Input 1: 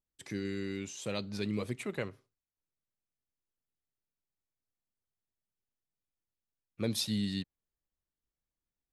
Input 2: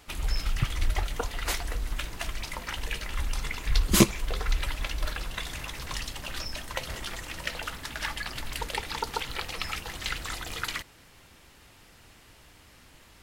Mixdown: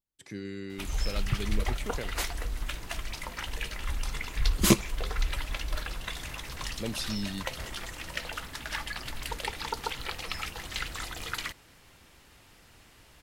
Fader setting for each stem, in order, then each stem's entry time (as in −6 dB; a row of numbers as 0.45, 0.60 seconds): −2.0, −2.0 decibels; 0.00, 0.70 seconds